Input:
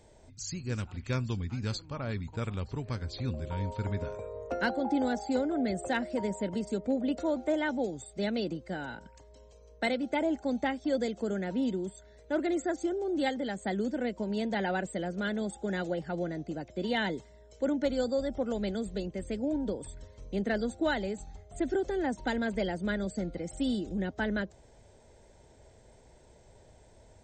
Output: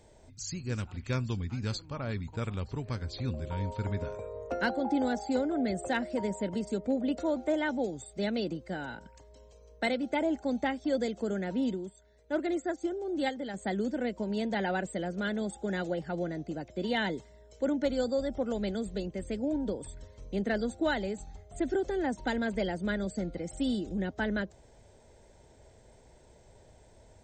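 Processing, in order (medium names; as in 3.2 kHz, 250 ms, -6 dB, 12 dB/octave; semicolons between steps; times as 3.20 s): 11.74–13.54 s: upward expansion 1.5:1, over -42 dBFS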